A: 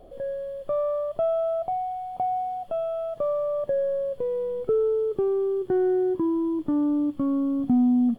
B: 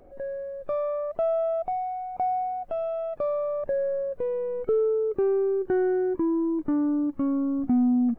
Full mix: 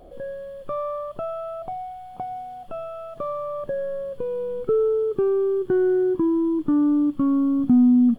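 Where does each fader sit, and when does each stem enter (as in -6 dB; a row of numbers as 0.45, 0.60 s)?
+1.5, -2.0 dB; 0.00, 0.00 s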